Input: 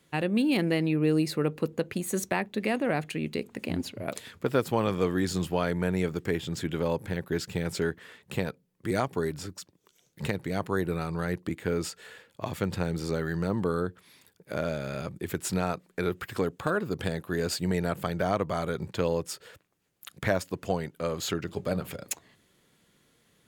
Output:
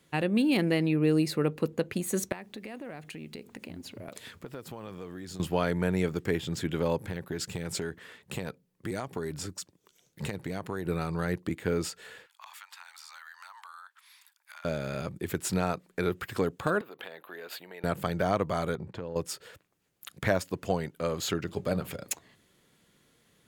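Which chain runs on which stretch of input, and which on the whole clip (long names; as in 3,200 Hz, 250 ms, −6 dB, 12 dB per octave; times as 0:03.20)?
0:02.32–0:05.40: downward compressor 5 to 1, threshold −39 dBFS + bit-depth reduction 12 bits, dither none
0:07.03–0:10.86: downward compressor, threshold −29 dBFS + dynamic equaliser 8,000 Hz, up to +5 dB, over −55 dBFS, Q 1.3
0:12.26–0:14.65: Butterworth high-pass 890 Hz 48 dB per octave + downward compressor 4 to 1, threshold −45 dBFS
0:16.81–0:17.84: flat-topped bell 6,800 Hz −14.5 dB 1.3 octaves + downward compressor 3 to 1, threshold −34 dBFS + high-pass filter 580 Hz
0:18.75–0:19.16: low-pass filter 1,200 Hz 6 dB per octave + downward compressor 4 to 1, threshold −34 dBFS
whole clip: no processing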